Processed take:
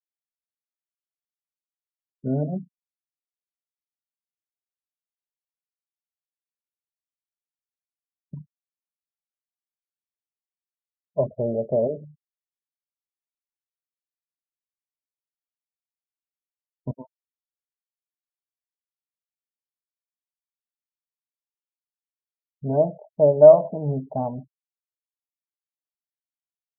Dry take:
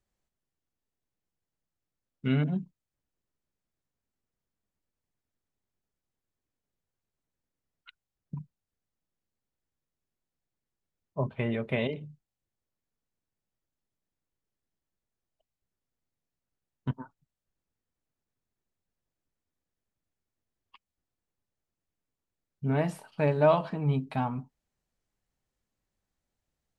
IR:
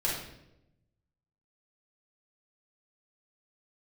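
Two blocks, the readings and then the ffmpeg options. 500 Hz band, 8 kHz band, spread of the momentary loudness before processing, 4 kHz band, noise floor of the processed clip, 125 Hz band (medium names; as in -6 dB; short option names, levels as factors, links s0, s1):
+12.0 dB, no reading, 19 LU, under -30 dB, under -85 dBFS, +0.5 dB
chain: -af "lowpass=f=610:t=q:w=4.9,afftfilt=real='re*gte(hypot(re,im),0.0126)':imag='im*gte(hypot(re,im),0.0126)':win_size=1024:overlap=0.75"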